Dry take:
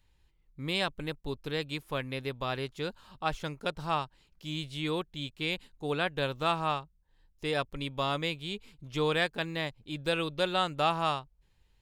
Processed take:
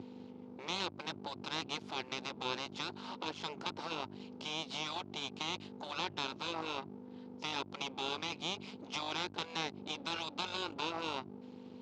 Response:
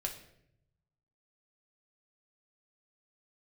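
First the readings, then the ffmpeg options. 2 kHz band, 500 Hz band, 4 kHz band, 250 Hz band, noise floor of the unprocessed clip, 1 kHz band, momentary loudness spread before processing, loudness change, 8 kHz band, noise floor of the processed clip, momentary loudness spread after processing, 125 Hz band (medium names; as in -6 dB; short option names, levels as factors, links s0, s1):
-7.5 dB, -11.5 dB, -3.0 dB, -7.5 dB, -69 dBFS, -7.5 dB, 10 LU, -7.0 dB, +2.0 dB, -52 dBFS, 7 LU, -14.0 dB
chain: -af "aeval=exprs='val(0)+0.00794*(sin(2*PI*50*n/s)+sin(2*PI*2*50*n/s)/2+sin(2*PI*3*50*n/s)/3+sin(2*PI*4*50*n/s)/4+sin(2*PI*5*50*n/s)/5)':c=same,acompressor=threshold=0.0112:ratio=6,afftfilt=real='re*lt(hypot(re,im),0.0224)':imag='im*lt(hypot(re,im),0.0224)':win_size=1024:overlap=0.75,aeval=exprs='max(val(0),0)':c=same,highpass=f=110:w=0.5412,highpass=f=110:w=1.3066,equalizer=f=140:t=q:w=4:g=-8,equalizer=f=340:t=q:w=4:g=3,equalizer=f=870:t=q:w=4:g=6,equalizer=f=1800:t=q:w=4:g=-7,lowpass=f=5600:w=0.5412,lowpass=f=5600:w=1.3066,volume=5.31"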